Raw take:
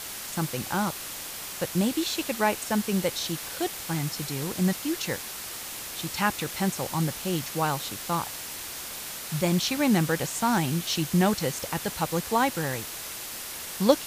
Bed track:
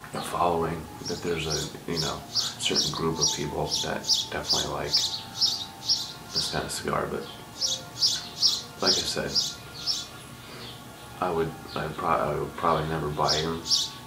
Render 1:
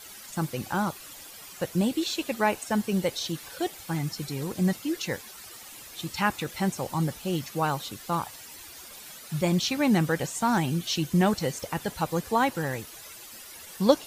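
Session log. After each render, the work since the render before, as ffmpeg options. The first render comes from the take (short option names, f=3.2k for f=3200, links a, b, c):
-af "afftdn=nr=12:nf=-38"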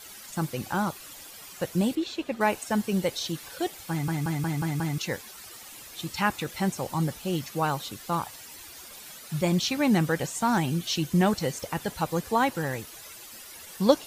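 -filter_complex "[0:a]asettb=1/sr,asplit=3[a][b][c];[a]atrim=end=1.954[d];[b]atrim=start=1.95:end=2.41,asetpts=PTS-STARTPTS,afade=t=in:d=0.004:c=qsin,afade=t=out:st=0.456:d=0.004:c=qsin,lowpass=f=1.9k:p=1[e];[c]atrim=start=2.406[f];[d][e]acrossfade=d=0.004:c1=hsin:c2=qsin[g];[g][f]acrossfade=d=0.004:c1=qsin:c2=hsin,asplit=7[h][i][j][k][l][m][n];[h]atrim=end=4.082[o];[i]atrim=start=3.898:end=4.082[p];[j]atrim=start=3.898:end=4.082[q];[k]atrim=start=3.898:end=4.082[r];[l]atrim=start=3.898:end=4.082[s];[m]atrim=start=3.898:end=4.082[t];[n]atrim=start=4.978[u];[o][p]acrossfade=d=0.004:c1=hsin:c2=hsin[v];[v][q]acrossfade=d=0.004:c1=hsin:c2=hsin[w];[w][r]acrossfade=d=0.004:c1=hsin:c2=hsin[x];[x][s]acrossfade=d=0.004:c1=hsin:c2=hsin[y];[y][t]acrossfade=d=0.004:c1=hsin:c2=hsin[z];[z][u]acrossfade=d=0.004:c1=hsin:c2=hsin"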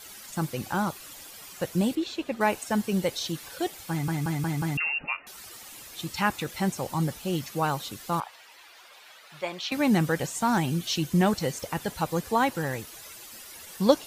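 -filter_complex "[0:a]asettb=1/sr,asplit=3[a][b][c];[a]atrim=end=4.774[d];[b]atrim=start=4.77:end=5.27,asetpts=PTS-STARTPTS,afade=t=in:d=0.004:c=qsin,afade=t=out:st=0.496:d=0.004:c=qsin,lowpass=f=2.5k:t=q:w=0.5098,lowpass=f=2.5k:t=q:w=0.6013,lowpass=f=2.5k:t=q:w=0.9,lowpass=f=2.5k:t=q:w=2.563,afreqshift=-2900[e];[c]atrim=start=5.266[f];[d][e]acrossfade=d=0.004:c1=hsin:c2=qsin[g];[g][f]acrossfade=d=0.004:c1=qsin:c2=hsin,asettb=1/sr,asplit=3[h][i][j];[h]atrim=end=8.204[k];[i]atrim=start=8.2:end=9.72,asetpts=PTS-STARTPTS,afade=t=in:d=0.004:c=qsin,afade=t=out:st=1.516:d=0.004:c=qsin,acrossover=split=490 4100:gain=0.0631 1 0.158[l][m][n];[l][m][n]amix=inputs=3:normalize=0[o];[j]atrim=start=9.716[p];[k][o]acrossfade=d=0.004:c1=hsin:c2=qsin[q];[q][p]acrossfade=d=0.004:c1=qsin:c2=hsin"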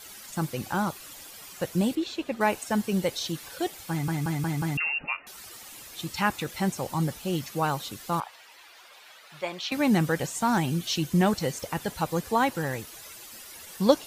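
-af anull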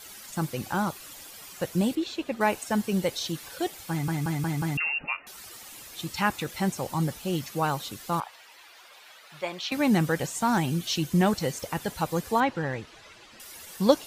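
-filter_complex "[0:a]asettb=1/sr,asplit=3[a][b][c];[a]atrim=end=12.404[d];[b]atrim=start=12.4:end=13.4,asetpts=PTS-STARTPTS,afade=t=in:d=0.004:c=qsin,afade=t=out:st=0.996:d=0.004:c=qsin,lowpass=3.7k[e];[c]atrim=start=13.396[f];[d][e]acrossfade=d=0.004:c1=hsin:c2=qsin[g];[g][f]acrossfade=d=0.004:c1=qsin:c2=hsin"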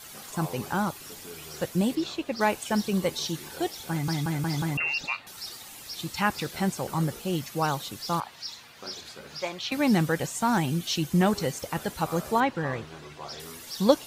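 -filter_complex "[1:a]volume=-16dB[a];[0:a][a]amix=inputs=2:normalize=0"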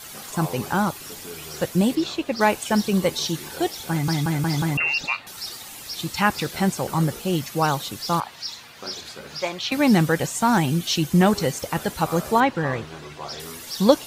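-af "volume=5.5dB,alimiter=limit=-1dB:level=0:latency=1"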